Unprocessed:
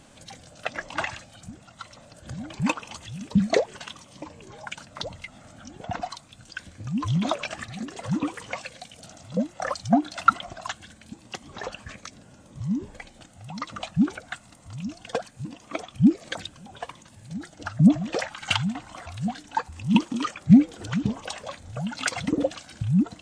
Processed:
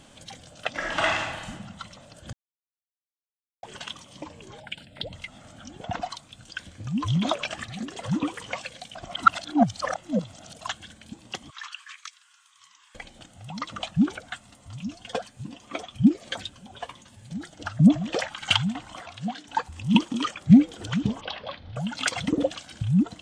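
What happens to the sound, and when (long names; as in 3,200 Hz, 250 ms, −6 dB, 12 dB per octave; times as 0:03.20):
0:00.71–0:01.50: thrown reverb, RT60 1.2 s, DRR −5 dB
0:02.33–0:03.63: silence
0:04.60–0:05.13: phaser with its sweep stopped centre 2,700 Hz, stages 4
0:08.95–0:10.61: reverse
0:11.50–0:12.95: elliptic high-pass filter 1,100 Hz, stop band 50 dB
0:14.30–0:17.32: notch comb filter 160 Hz
0:19.02–0:19.48: band-pass filter 200–6,500 Hz
0:21.21–0:21.76: Butterworth low-pass 4,700 Hz 48 dB per octave
whole clip: parametric band 3,200 Hz +6 dB 0.31 octaves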